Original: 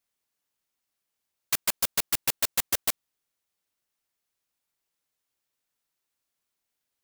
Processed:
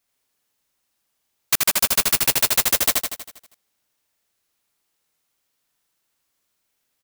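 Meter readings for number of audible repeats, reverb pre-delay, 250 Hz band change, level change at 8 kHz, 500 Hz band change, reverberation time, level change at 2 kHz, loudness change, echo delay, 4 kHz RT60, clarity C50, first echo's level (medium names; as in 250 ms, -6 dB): 7, no reverb, +9.5 dB, +9.5 dB, +9.5 dB, no reverb, +9.5 dB, +9.0 dB, 80 ms, no reverb, no reverb, -3.0 dB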